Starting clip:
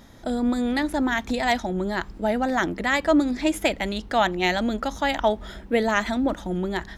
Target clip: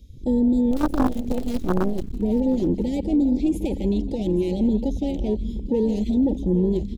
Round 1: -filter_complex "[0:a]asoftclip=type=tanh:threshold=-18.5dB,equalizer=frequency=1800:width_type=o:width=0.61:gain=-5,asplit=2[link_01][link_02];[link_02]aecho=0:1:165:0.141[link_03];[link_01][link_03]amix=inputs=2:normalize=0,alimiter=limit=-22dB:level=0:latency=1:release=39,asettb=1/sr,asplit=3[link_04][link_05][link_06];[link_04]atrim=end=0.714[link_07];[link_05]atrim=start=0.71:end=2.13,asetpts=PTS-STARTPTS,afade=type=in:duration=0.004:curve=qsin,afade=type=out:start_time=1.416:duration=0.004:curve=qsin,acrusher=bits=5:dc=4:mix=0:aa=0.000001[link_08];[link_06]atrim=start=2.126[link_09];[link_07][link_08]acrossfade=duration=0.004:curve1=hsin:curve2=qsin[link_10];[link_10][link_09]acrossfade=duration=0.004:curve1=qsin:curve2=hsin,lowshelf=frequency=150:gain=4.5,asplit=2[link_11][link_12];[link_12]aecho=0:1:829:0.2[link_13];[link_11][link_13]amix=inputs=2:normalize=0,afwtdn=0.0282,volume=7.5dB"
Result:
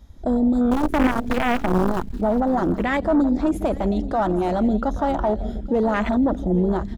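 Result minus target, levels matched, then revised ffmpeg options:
1,000 Hz band +10.0 dB
-filter_complex "[0:a]asoftclip=type=tanh:threshold=-18.5dB,asuperstop=centerf=1100:order=12:qfactor=0.62,equalizer=frequency=1800:width_type=o:width=0.61:gain=-5,asplit=2[link_01][link_02];[link_02]aecho=0:1:165:0.141[link_03];[link_01][link_03]amix=inputs=2:normalize=0,alimiter=limit=-22dB:level=0:latency=1:release=39,asettb=1/sr,asplit=3[link_04][link_05][link_06];[link_04]atrim=end=0.714[link_07];[link_05]atrim=start=0.71:end=2.13,asetpts=PTS-STARTPTS,afade=type=in:duration=0.004:curve=qsin,afade=type=out:start_time=1.416:duration=0.004:curve=qsin,acrusher=bits=5:dc=4:mix=0:aa=0.000001[link_08];[link_06]atrim=start=2.126[link_09];[link_07][link_08]acrossfade=duration=0.004:curve1=hsin:curve2=qsin[link_10];[link_10][link_09]acrossfade=duration=0.004:curve1=qsin:curve2=hsin,lowshelf=frequency=150:gain=4.5,asplit=2[link_11][link_12];[link_12]aecho=0:1:829:0.2[link_13];[link_11][link_13]amix=inputs=2:normalize=0,afwtdn=0.0282,volume=7.5dB"

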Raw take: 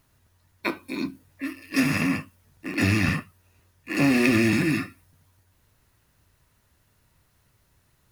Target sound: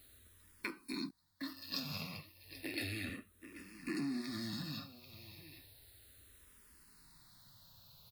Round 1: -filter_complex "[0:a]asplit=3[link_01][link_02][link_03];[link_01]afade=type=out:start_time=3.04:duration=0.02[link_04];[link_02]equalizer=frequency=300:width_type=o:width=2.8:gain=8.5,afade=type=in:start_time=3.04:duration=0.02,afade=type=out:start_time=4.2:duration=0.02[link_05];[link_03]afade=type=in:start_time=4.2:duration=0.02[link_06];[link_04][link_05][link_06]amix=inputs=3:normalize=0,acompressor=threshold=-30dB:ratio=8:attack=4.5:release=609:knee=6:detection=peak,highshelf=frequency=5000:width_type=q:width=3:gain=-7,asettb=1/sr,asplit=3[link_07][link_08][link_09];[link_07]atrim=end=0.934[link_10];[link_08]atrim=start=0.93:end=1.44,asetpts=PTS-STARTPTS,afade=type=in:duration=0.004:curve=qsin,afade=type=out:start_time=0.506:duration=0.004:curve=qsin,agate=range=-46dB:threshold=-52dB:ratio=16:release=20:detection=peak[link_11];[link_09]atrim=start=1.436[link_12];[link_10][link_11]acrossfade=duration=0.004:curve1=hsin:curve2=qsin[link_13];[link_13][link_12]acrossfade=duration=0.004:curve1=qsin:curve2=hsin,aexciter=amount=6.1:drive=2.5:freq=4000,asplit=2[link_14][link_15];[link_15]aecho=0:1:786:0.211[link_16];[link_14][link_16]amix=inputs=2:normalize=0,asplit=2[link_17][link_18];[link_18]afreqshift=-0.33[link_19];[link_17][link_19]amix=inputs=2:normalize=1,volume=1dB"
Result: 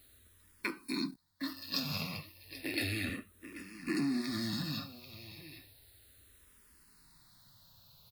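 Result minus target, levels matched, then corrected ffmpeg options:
downward compressor: peak gain reduction −5.5 dB
-filter_complex "[0:a]asplit=3[link_01][link_02][link_03];[link_01]afade=type=out:start_time=3.04:duration=0.02[link_04];[link_02]equalizer=frequency=300:width_type=o:width=2.8:gain=8.5,afade=type=in:start_time=3.04:duration=0.02,afade=type=out:start_time=4.2:duration=0.02[link_05];[link_03]afade=type=in:start_time=4.2:duration=0.02[link_06];[link_04][link_05][link_06]amix=inputs=3:normalize=0,acompressor=threshold=-36.5dB:ratio=8:attack=4.5:release=609:knee=6:detection=peak,highshelf=frequency=5000:width_type=q:width=3:gain=-7,asettb=1/sr,asplit=3[link_07][link_08][link_09];[link_07]atrim=end=0.934[link_10];[link_08]atrim=start=0.93:end=1.44,asetpts=PTS-STARTPTS,afade=type=in:duration=0.004:curve=qsin,afade=type=out:start_time=0.506:duration=0.004:curve=qsin,agate=range=-46dB:threshold=-52dB:ratio=16:release=20:detection=peak[link_11];[link_09]atrim=start=1.436[link_12];[link_10][link_11]acrossfade=duration=0.004:curve1=hsin:curve2=qsin[link_13];[link_13][link_12]acrossfade=duration=0.004:curve1=qsin:curve2=hsin,aexciter=amount=6.1:drive=2.5:freq=4000,asplit=2[link_14][link_15];[link_15]aecho=0:1:786:0.211[link_16];[link_14][link_16]amix=inputs=2:normalize=0,asplit=2[link_17][link_18];[link_18]afreqshift=-0.33[link_19];[link_17][link_19]amix=inputs=2:normalize=1,volume=1dB"

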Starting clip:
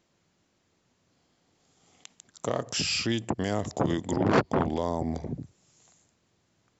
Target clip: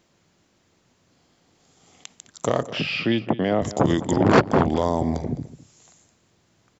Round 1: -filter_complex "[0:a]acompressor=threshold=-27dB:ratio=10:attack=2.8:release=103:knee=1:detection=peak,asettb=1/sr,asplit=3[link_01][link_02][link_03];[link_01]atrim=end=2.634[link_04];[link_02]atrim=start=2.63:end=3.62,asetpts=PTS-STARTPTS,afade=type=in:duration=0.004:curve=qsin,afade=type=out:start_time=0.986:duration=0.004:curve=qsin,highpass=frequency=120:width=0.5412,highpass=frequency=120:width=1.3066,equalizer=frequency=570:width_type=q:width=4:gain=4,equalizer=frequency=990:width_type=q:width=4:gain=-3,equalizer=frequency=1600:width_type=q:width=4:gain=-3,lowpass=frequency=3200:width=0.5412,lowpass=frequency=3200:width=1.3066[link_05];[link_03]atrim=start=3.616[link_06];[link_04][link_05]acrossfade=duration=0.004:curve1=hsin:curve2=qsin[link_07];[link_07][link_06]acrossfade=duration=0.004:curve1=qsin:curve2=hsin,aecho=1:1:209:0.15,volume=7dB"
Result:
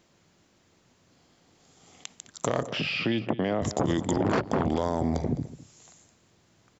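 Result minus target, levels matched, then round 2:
downward compressor: peak gain reduction +12.5 dB
-filter_complex "[0:a]asettb=1/sr,asplit=3[link_01][link_02][link_03];[link_01]atrim=end=2.634[link_04];[link_02]atrim=start=2.63:end=3.62,asetpts=PTS-STARTPTS,afade=type=in:duration=0.004:curve=qsin,afade=type=out:start_time=0.986:duration=0.004:curve=qsin,highpass=frequency=120:width=0.5412,highpass=frequency=120:width=1.3066,equalizer=frequency=570:width_type=q:width=4:gain=4,equalizer=frequency=990:width_type=q:width=4:gain=-3,equalizer=frequency=1600:width_type=q:width=4:gain=-3,lowpass=frequency=3200:width=0.5412,lowpass=frequency=3200:width=1.3066[link_05];[link_03]atrim=start=3.616[link_06];[link_04][link_05]acrossfade=duration=0.004:curve1=hsin:curve2=qsin[link_07];[link_07][link_06]acrossfade=duration=0.004:curve1=qsin:curve2=hsin,aecho=1:1:209:0.15,volume=7dB"

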